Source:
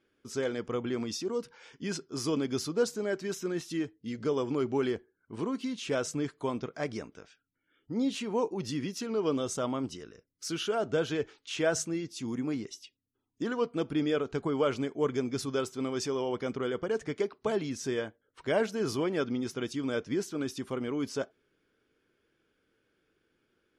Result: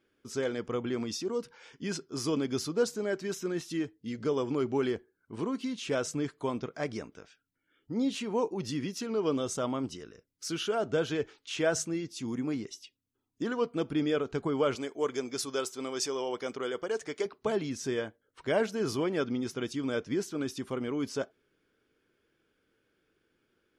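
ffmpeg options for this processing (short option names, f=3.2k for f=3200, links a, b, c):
-filter_complex "[0:a]asettb=1/sr,asplit=3[a][b][c];[a]atrim=end=14.754[d];[b]atrim=start=14.75:end=17.26,asetpts=PTS-STARTPTS,afade=t=in:d=0.004:c=qsin,afade=t=out:st=2.506:d=0.004:c=qsin,bass=f=250:g=-13,treble=f=4k:g=6[e];[c]atrim=start=17.256[f];[d][e]acrossfade=d=0.004:c1=hsin:c2=qsin[g];[g][f]acrossfade=d=0.004:c1=qsin:c2=hsin"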